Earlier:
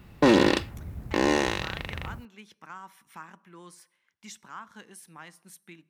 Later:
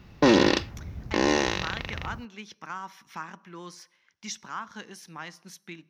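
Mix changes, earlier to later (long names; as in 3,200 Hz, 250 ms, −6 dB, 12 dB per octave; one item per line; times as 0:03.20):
speech +6.0 dB
master: add high shelf with overshoot 7,100 Hz −7 dB, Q 3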